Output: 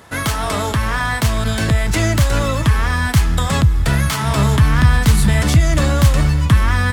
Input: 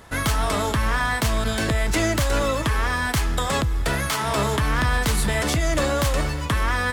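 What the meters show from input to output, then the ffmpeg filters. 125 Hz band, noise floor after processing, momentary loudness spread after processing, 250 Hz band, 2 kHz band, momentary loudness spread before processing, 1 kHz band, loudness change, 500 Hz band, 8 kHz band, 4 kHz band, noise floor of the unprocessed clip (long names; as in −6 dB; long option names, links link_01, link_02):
+11.0 dB, −22 dBFS, 6 LU, +7.0 dB, +3.0 dB, 2 LU, +2.5 dB, +6.5 dB, +1.0 dB, +3.5 dB, +3.5 dB, −27 dBFS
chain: -af "highpass=84,asubboost=boost=6:cutoff=170,volume=3.5dB"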